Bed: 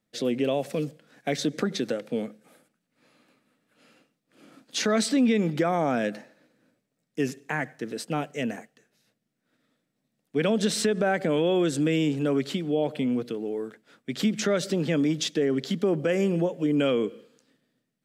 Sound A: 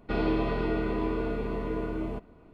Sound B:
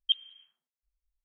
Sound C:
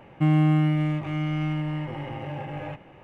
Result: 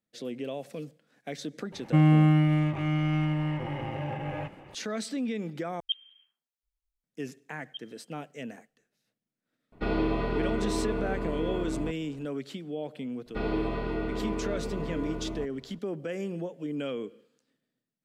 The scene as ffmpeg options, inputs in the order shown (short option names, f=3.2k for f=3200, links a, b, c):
-filter_complex "[2:a]asplit=2[a][b];[1:a]asplit=2[c][d];[0:a]volume=-10dB,asplit=2[e][f];[e]atrim=end=5.804[g];[a]atrim=end=1.24,asetpts=PTS-STARTPTS,volume=-4.5dB[h];[f]atrim=start=7.036[i];[3:a]atrim=end=3.03,asetpts=PTS-STARTPTS,afade=t=in:d=0.004:c=hsin,afade=t=out:st=3.026:d=0.004:c=hsin,adelay=1720[j];[b]atrim=end=1.24,asetpts=PTS-STARTPTS,volume=-16dB,afade=t=in:d=0.004:c=hsin,afade=t=out:st=1.236:d=0.004:c=hsin,adelay=7650[k];[c]atrim=end=2.53,asetpts=PTS-STARTPTS,volume=-0.5dB,afade=t=in:d=0.004:c=hsin,afade=t=out:st=2.526:d=0.004:c=hsin,adelay=9720[l];[d]atrim=end=2.53,asetpts=PTS-STARTPTS,volume=-3dB,afade=t=in:d=0.004:c=hsin,afade=t=out:st=2.526:d=0.004:c=hsin,adelay=13260[m];[g][h]acrossfade=d=0.004:c1=hsin:c2=hsin[n];[n][i]acrossfade=d=0.004:c1=hsin:c2=hsin[o];[o][j][k][l][m]amix=inputs=5:normalize=0"